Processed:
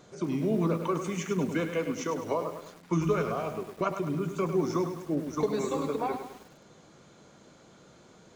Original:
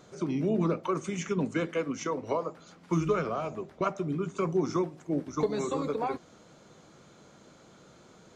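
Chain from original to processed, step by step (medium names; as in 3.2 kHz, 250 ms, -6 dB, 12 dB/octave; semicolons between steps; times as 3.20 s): band-stop 1.3 kHz, Q 21; bit-crushed delay 103 ms, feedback 55%, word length 8-bit, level -8 dB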